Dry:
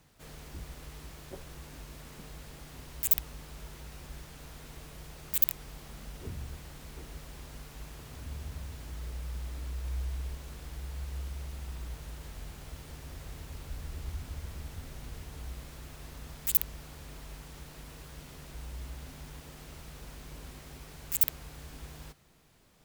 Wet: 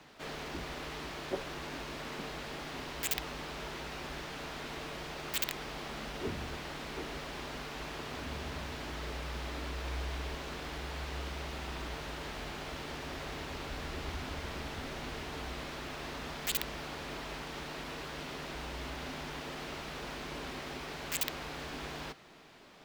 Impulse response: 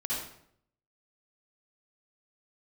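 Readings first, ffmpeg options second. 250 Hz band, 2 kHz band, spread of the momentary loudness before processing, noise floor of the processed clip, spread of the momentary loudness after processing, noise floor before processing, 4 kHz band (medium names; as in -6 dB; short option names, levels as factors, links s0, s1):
+7.0 dB, +11.0 dB, 21 LU, -43 dBFS, 7 LU, -50 dBFS, +8.5 dB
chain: -filter_complex "[0:a]acrossover=split=220 5100:gain=0.158 1 0.141[s0][s1][s2];[s0][s1][s2]amix=inputs=3:normalize=0,bandreject=f=500:w=15,asoftclip=type=tanh:threshold=0.0316,volume=3.76"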